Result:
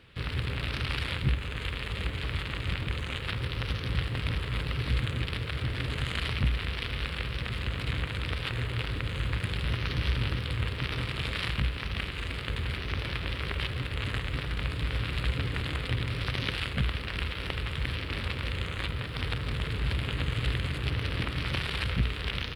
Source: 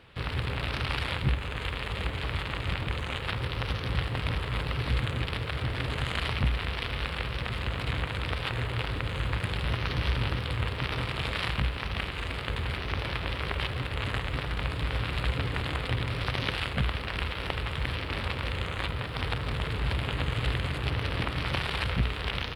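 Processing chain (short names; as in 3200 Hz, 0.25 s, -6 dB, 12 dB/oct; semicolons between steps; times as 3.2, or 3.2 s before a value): bell 800 Hz -8 dB 1.2 oct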